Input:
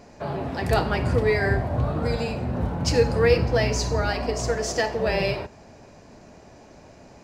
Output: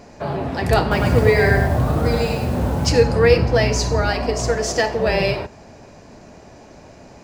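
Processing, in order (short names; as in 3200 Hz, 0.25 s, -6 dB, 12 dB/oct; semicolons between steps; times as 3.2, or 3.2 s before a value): 0.81–2.87 lo-fi delay 0.102 s, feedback 35%, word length 7-bit, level -3.5 dB; gain +5 dB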